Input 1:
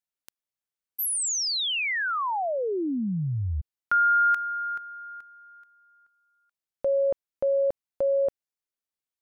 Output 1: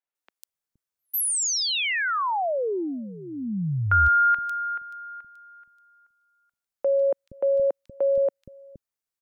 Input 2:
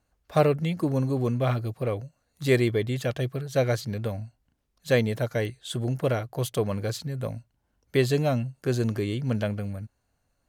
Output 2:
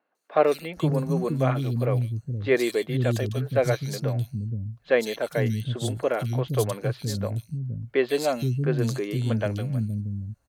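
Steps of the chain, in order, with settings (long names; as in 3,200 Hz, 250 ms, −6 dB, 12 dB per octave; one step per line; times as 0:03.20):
three-band delay without the direct sound mids, highs, lows 150/470 ms, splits 260/3,100 Hz
level +2.5 dB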